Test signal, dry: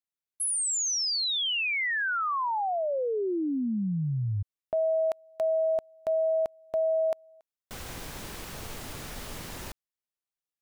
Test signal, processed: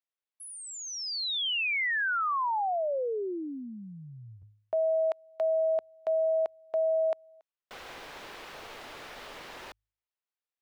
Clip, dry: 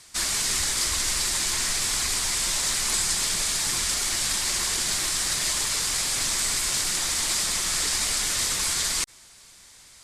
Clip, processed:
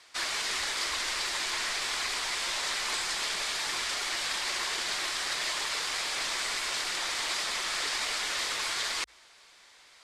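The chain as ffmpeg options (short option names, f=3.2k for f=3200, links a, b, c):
-filter_complex "[0:a]acrossover=split=360 4400:gain=0.126 1 0.158[a][b][c];[a][b][c]amix=inputs=3:normalize=0,bandreject=f=52.38:t=h:w=4,bandreject=f=104.76:t=h:w=4"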